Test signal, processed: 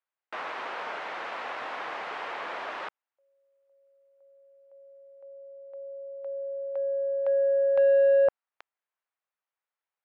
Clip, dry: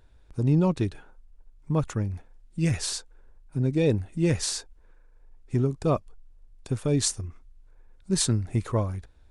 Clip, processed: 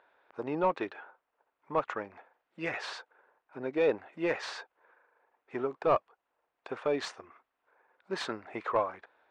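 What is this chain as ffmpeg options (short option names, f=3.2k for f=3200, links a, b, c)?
-filter_complex "[0:a]highpass=650,lowpass=2.5k,asplit=2[a][b];[b]highpass=f=720:p=1,volume=14dB,asoftclip=type=tanh:threshold=-16.5dB[c];[a][c]amix=inputs=2:normalize=0,lowpass=f=1.1k:p=1,volume=-6dB,volume=3dB"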